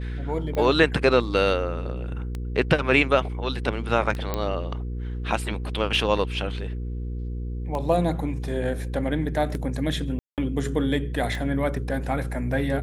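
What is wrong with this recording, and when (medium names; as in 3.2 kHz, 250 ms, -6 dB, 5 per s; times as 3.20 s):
hum 60 Hz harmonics 8 -30 dBFS
tick 33 1/3 rpm -18 dBFS
4.34 s: pop -12 dBFS
10.19–10.38 s: dropout 188 ms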